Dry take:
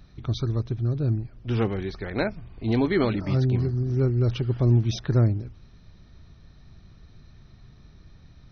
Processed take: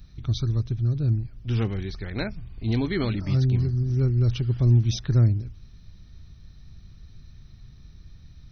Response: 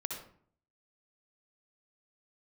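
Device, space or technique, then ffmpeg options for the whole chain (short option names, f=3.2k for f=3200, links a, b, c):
smiley-face EQ: -af "lowshelf=f=140:g=5.5,equalizer=f=650:t=o:w=2.8:g=-8,highshelf=f=5.5k:g=7.5"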